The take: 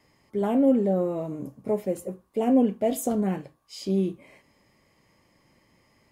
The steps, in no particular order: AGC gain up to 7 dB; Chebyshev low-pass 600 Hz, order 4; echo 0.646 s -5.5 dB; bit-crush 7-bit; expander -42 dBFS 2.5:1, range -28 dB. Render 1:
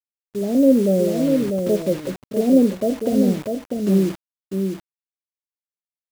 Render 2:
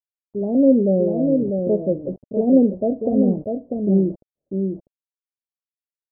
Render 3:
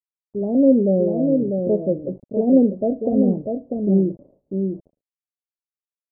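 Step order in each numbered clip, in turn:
Chebyshev low-pass > bit-crush > echo > expander > AGC; bit-crush > Chebyshev low-pass > expander > echo > AGC; echo > AGC > bit-crush > Chebyshev low-pass > expander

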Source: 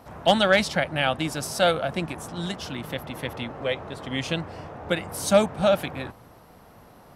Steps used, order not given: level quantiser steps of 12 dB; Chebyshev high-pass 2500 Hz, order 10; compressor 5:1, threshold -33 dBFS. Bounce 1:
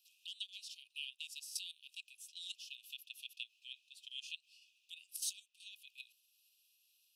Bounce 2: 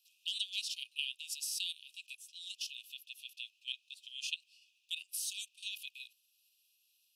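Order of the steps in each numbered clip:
compressor > level quantiser > Chebyshev high-pass; level quantiser > Chebyshev high-pass > compressor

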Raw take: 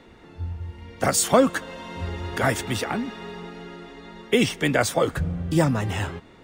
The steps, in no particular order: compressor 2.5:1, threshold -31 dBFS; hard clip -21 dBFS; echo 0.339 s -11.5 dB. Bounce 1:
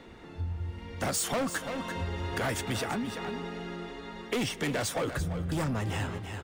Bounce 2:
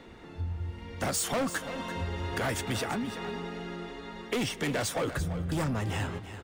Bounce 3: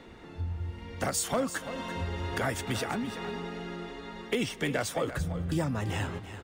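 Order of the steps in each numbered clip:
hard clip > echo > compressor; hard clip > compressor > echo; compressor > hard clip > echo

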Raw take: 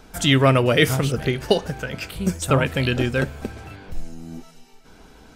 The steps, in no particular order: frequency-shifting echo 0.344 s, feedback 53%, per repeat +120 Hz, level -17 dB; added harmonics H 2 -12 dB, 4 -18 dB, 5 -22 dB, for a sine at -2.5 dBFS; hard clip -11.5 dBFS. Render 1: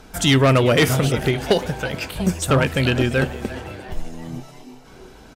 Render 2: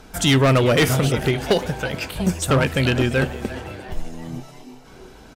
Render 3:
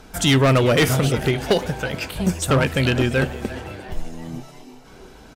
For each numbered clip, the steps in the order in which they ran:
frequency-shifting echo > hard clip > added harmonics; frequency-shifting echo > added harmonics > hard clip; added harmonics > frequency-shifting echo > hard clip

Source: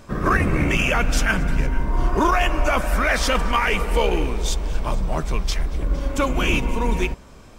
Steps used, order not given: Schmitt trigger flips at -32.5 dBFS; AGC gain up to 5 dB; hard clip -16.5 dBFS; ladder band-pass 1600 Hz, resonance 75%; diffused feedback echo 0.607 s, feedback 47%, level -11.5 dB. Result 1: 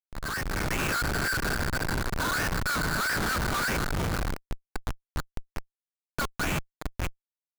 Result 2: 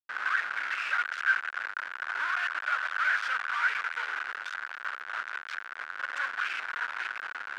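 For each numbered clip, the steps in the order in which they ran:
ladder band-pass > hard clip > diffused feedback echo > Schmitt trigger > AGC; AGC > hard clip > diffused feedback echo > Schmitt trigger > ladder band-pass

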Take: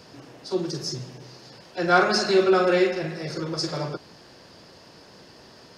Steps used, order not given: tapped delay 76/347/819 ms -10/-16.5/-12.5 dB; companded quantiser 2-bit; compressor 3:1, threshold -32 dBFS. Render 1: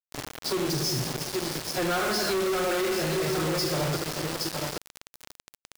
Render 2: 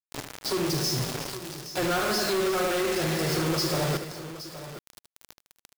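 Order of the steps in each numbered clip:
tapped delay > compressor > companded quantiser; compressor > companded quantiser > tapped delay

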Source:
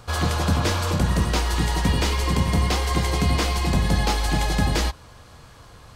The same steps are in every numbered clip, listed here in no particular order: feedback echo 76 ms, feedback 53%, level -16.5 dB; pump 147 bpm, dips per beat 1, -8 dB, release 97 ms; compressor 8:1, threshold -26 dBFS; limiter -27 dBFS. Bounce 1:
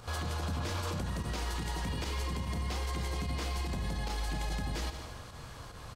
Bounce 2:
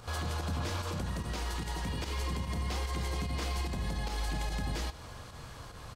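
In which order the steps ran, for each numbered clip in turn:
pump > feedback echo > compressor > limiter; compressor > limiter > pump > feedback echo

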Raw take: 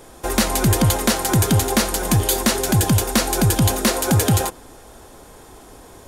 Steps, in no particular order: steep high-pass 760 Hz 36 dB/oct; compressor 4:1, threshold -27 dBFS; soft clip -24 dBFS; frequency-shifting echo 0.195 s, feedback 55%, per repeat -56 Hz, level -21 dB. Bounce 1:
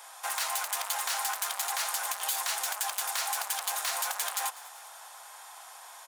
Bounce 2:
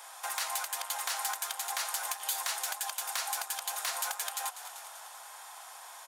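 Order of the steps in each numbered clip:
soft clip > frequency-shifting echo > steep high-pass > compressor; frequency-shifting echo > compressor > soft clip > steep high-pass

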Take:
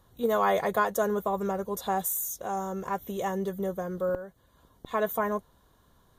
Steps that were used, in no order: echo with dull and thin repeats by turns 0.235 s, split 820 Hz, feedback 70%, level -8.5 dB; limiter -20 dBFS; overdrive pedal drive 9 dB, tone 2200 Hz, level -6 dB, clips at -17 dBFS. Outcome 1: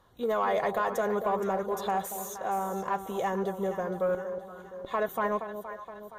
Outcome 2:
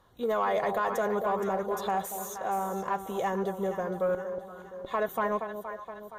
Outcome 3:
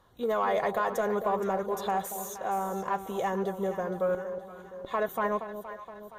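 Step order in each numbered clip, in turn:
limiter > echo with dull and thin repeats by turns > overdrive pedal; echo with dull and thin repeats by turns > limiter > overdrive pedal; limiter > overdrive pedal > echo with dull and thin repeats by turns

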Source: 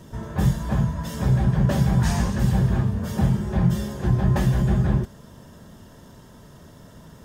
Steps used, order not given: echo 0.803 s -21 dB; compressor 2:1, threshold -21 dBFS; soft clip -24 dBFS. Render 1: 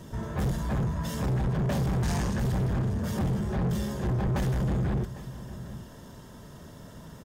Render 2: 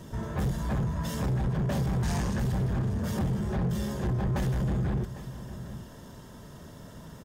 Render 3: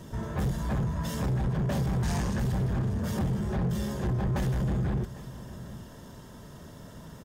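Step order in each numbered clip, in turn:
echo > soft clip > compressor; echo > compressor > soft clip; compressor > echo > soft clip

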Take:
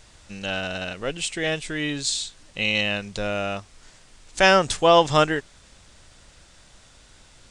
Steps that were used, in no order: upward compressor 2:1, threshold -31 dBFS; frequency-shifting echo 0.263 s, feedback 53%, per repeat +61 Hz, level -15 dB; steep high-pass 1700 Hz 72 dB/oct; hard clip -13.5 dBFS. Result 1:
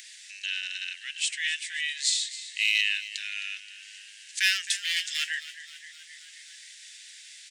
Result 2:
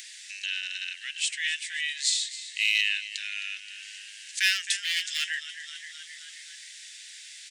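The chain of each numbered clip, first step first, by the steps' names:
hard clip > frequency-shifting echo > upward compressor > steep high-pass; frequency-shifting echo > hard clip > steep high-pass > upward compressor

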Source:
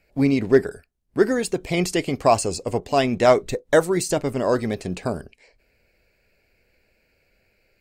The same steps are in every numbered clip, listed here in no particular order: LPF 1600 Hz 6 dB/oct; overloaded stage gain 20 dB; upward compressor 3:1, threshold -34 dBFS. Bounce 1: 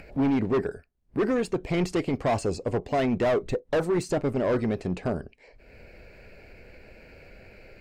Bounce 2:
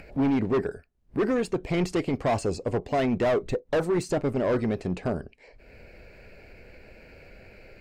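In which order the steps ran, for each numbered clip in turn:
upward compressor > overloaded stage > LPF; overloaded stage > upward compressor > LPF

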